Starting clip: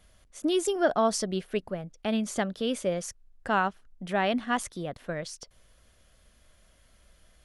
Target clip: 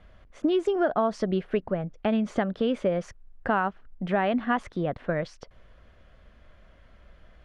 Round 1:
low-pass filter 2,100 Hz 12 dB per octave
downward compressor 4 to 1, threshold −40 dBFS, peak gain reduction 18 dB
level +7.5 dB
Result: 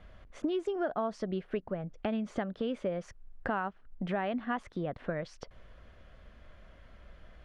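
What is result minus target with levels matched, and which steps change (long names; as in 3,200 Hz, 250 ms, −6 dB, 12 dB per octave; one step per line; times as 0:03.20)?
downward compressor: peak gain reduction +8 dB
change: downward compressor 4 to 1, threshold −29 dBFS, peak gain reduction 10 dB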